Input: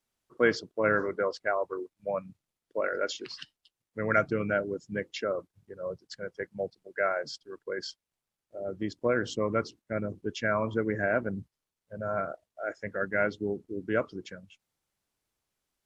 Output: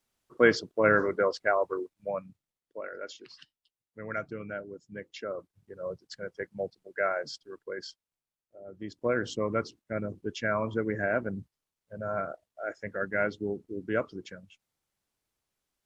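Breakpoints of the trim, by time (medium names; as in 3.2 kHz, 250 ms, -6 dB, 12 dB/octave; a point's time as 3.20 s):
1.73 s +3 dB
2.85 s -9.5 dB
4.86 s -9.5 dB
5.77 s -0.5 dB
7.46 s -0.5 dB
8.66 s -11 dB
9.09 s -1 dB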